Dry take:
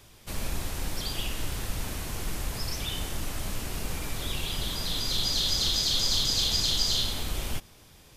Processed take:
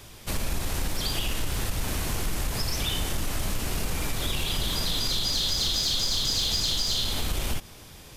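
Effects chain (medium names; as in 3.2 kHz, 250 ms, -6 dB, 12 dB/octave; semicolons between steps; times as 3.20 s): in parallel at -3.5 dB: saturation -28.5 dBFS, distortion -10 dB; on the sum: compression, threshold -26 dBFS, peak gain reduction 8 dB; trim +3 dB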